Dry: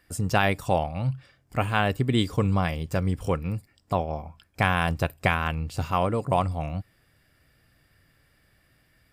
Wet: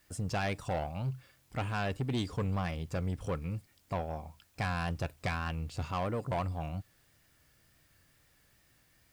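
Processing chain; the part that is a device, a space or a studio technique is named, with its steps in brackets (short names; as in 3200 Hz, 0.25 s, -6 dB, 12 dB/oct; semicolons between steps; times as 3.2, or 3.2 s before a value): compact cassette (soft clip -21 dBFS, distortion -10 dB; LPF 8600 Hz; wow and flutter; white noise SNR 34 dB); gain -6 dB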